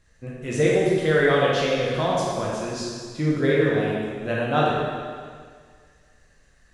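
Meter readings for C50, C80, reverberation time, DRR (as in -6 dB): -2.5 dB, 0.5 dB, 1.9 s, -5.5 dB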